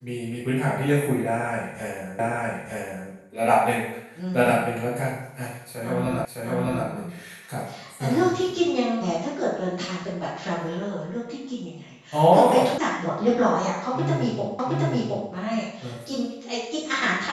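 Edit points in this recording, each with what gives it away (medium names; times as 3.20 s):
2.19 s: repeat of the last 0.91 s
6.25 s: repeat of the last 0.61 s
12.78 s: sound stops dead
14.59 s: repeat of the last 0.72 s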